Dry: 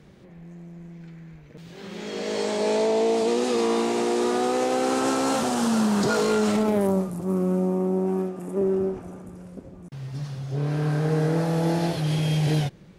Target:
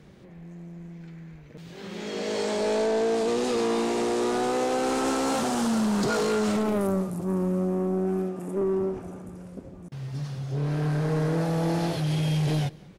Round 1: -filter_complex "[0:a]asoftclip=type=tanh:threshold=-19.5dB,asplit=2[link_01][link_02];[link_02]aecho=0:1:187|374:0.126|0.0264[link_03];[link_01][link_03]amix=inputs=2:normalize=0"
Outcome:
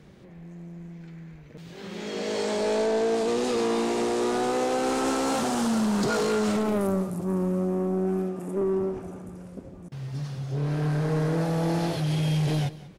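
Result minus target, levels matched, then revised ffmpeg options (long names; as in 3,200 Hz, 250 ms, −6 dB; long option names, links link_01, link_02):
echo-to-direct +6.5 dB
-filter_complex "[0:a]asoftclip=type=tanh:threshold=-19.5dB,asplit=2[link_01][link_02];[link_02]aecho=0:1:187|374:0.0596|0.0125[link_03];[link_01][link_03]amix=inputs=2:normalize=0"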